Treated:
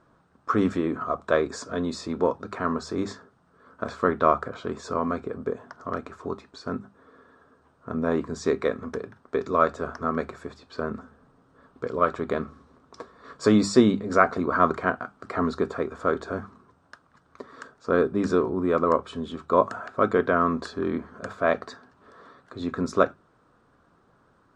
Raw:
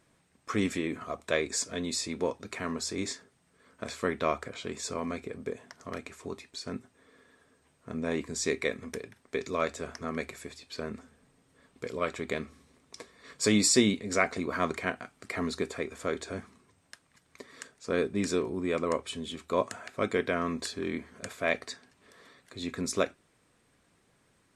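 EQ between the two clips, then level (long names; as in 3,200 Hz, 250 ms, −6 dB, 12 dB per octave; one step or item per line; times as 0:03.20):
low-pass filter 4,800 Hz 12 dB per octave
high shelf with overshoot 1,700 Hz −7.5 dB, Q 3
mains-hum notches 50/100/150/200 Hz
+6.5 dB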